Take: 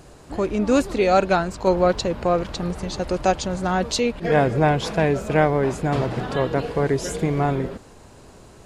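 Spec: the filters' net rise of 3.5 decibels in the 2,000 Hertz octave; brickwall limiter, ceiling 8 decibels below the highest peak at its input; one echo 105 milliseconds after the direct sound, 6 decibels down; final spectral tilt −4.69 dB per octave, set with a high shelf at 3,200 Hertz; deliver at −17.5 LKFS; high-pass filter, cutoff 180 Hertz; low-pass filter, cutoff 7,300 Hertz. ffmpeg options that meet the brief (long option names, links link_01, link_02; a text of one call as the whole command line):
ffmpeg -i in.wav -af "highpass=180,lowpass=7300,equalizer=frequency=2000:width_type=o:gain=3.5,highshelf=frequency=3200:gain=4,alimiter=limit=-10dB:level=0:latency=1,aecho=1:1:105:0.501,volume=5dB" out.wav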